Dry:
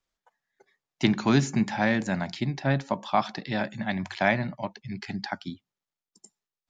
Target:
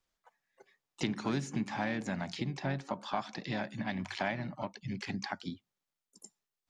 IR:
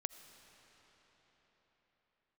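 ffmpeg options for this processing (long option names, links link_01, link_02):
-filter_complex "[0:a]acompressor=threshold=-36dB:ratio=2.5,asplit=2[link_01][link_02];[link_02]asetrate=58866,aresample=44100,atempo=0.749154,volume=-11dB[link_03];[link_01][link_03]amix=inputs=2:normalize=0"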